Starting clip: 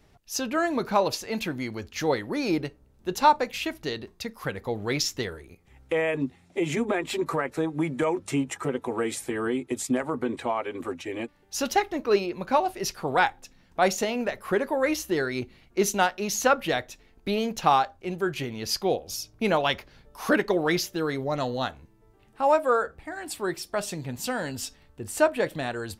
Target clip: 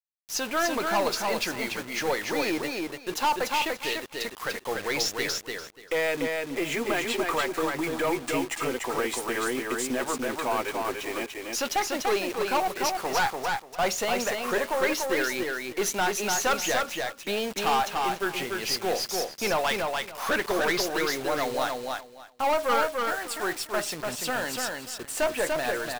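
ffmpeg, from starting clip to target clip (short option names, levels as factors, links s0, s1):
-af "highpass=f=1100:p=1,highshelf=f=3200:g=-8,aeval=exprs='(tanh(28.2*val(0)+0.2)-tanh(0.2))/28.2':c=same,acrusher=bits=7:mix=0:aa=0.000001,aecho=1:1:292|584|876:0.668|0.127|0.0241,volume=2.66"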